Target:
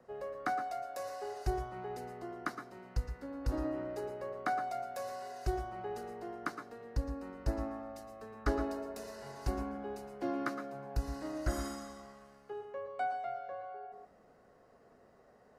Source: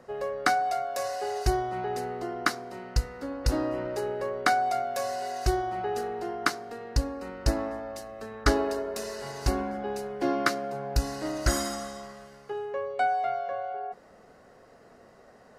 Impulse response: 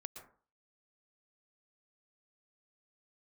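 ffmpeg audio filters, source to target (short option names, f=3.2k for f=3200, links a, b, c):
-filter_complex "[0:a]equalizer=f=5.1k:w=0.32:g=-5,acrossover=split=200|570|1900[a][b][c][d];[d]alimiter=level_in=5dB:limit=-24dB:level=0:latency=1:release=149,volume=-5dB[e];[a][b][c][e]amix=inputs=4:normalize=0[f];[1:a]atrim=start_sample=2205,afade=t=out:st=0.18:d=0.01,atrim=end_sample=8379[g];[f][g]afir=irnorm=-1:irlink=0,volume=-3dB"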